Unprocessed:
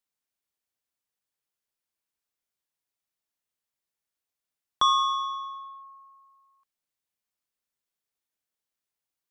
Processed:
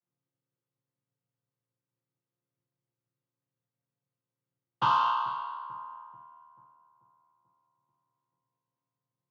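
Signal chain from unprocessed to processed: chord vocoder minor triad, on A#2; high shelf 2400 Hz -8.5 dB; soft clip -18 dBFS, distortion -17 dB; air absorption 78 m; darkening echo 0.438 s, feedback 57%, low-pass 1300 Hz, level -17 dB; on a send at -2.5 dB: reverb RT60 0.70 s, pre-delay 3 ms

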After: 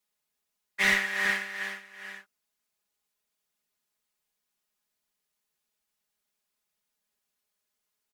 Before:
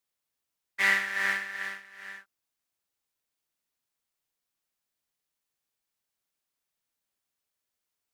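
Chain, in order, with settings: one-sided clip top -20.5 dBFS; comb 4.8 ms, depth 94%

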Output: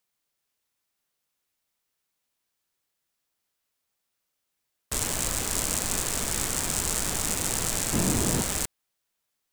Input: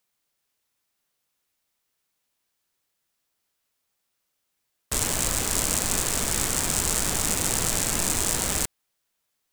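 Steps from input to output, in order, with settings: 7.93–8.42 bell 180 Hz +12 dB 2.9 oct; gain -3 dB

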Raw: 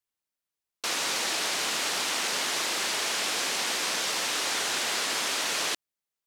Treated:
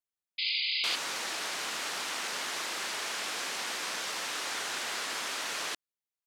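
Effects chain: dynamic EQ 1400 Hz, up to +4 dB, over -44 dBFS, Q 0.84; painted sound noise, 0.38–0.96, 2000–5000 Hz -23 dBFS; gain -8 dB

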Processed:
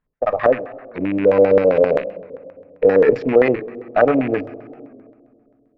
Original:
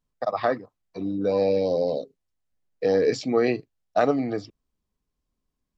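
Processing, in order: rattling part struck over -42 dBFS, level -28 dBFS; in parallel at 0 dB: limiter -17 dBFS, peak gain reduction 8 dB; on the sum: added harmonics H 7 -29 dB, 8 -31 dB, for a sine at -5.5 dBFS; on a send at -13.5 dB: reverb RT60 2.2 s, pre-delay 4 ms; on the sum: LFO low-pass square 7.6 Hz 540–1800 Hz; record warp 45 rpm, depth 100 cents

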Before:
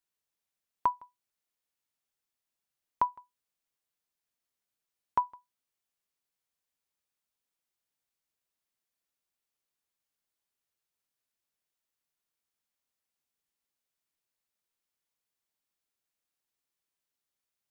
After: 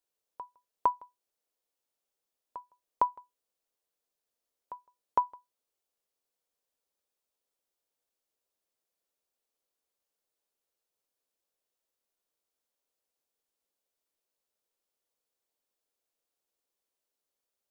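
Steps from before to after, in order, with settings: graphic EQ 125/500/2000 Hz -9/+9/-4 dB; reverse echo 0.458 s -17.5 dB

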